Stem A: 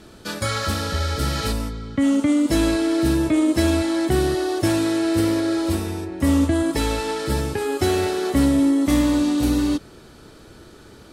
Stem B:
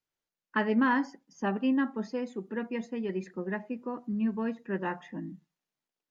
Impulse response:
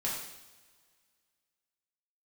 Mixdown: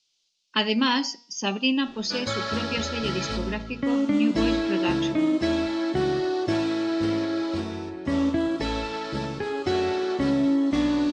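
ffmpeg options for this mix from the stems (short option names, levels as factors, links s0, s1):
-filter_complex "[0:a]adelay=1850,volume=0.501,asplit=2[s0][s1];[s1]volume=0.237[s2];[1:a]bandreject=f=238.8:t=h:w=4,bandreject=f=477.6:t=h:w=4,bandreject=f=716.4:t=h:w=4,bandreject=f=955.2:t=h:w=4,bandreject=f=1194:t=h:w=4,bandreject=f=1432.8:t=h:w=4,bandreject=f=1671.6:t=h:w=4,bandreject=f=1910.4:t=h:w=4,bandreject=f=2149.2:t=h:w=4,bandreject=f=2388:t=h:w=4,bandreject=f=2626.8:t=h:w=4,bandreject=f=2865.6:t=h:w=4,bandreject=f=3104.4:t=h:w=4,bandreject=f=3343.2:t=h:w=4,bandreject=f=3582:t=h:w=4,bandreject=f=3820.8:t=h:w=4,bandreject=f=4059.6:t=h:w=4,bandreject=f=4298.4:t=h:w=4,bandreject=f=4537.2:t=h:w=4,bandreject=f=4776:t=h:w=4,bandreject=f=5014.8:t=h:w=4,bandreject=f=5253.6:t=h:w=4,bandreject=f=5492.4:t=h:w=4,bandreject=f=5731.2:t=h:w=4,bandreject=f=5970:t=h:w=4,bandreject=f=6208.8:t=h:w=4,bandreject=f=6447.6:t=h:w=4,bandreject=f=6686.4:t=h:w=4,bandreject=f=6925.2:t=h:w=4,bandreject=f=7164:t=h:w=4,bandreject=f=7402.8:t=h:w=4,bandreject=f=7641.6:t=h:w=4,bandreject=f=7880.4:t=h:w=4,aexciter=amount=12.8:drive=6.4:freq=2700,volume=1.33[s3];[2:a]atrim=start_sample=2205[s4];[s2][s4]afir=irnorm=-1:irlink=0[s5];[s0][s3][s5]amix=inputs=3:normalize=0,lowpass=f=5500:w=0.5412,lowpass=f=5500:w=1.3066,equalizer=f=70:t=o:w=0.61:g=-13.5"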